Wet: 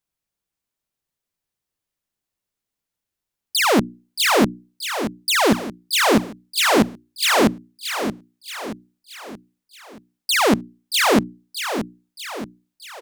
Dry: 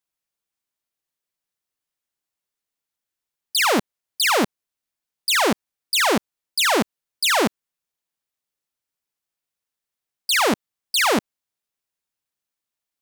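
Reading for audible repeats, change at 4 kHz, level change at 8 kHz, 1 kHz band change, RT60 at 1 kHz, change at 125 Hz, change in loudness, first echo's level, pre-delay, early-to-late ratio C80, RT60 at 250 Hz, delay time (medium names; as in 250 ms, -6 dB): 5, +0.5 dB, +0.5 dB, +1.5 dB, no reverb, +8.0 dB, +1.0 dB, -9.0 dB, no reverb, no reverb, no reverb, 627 ms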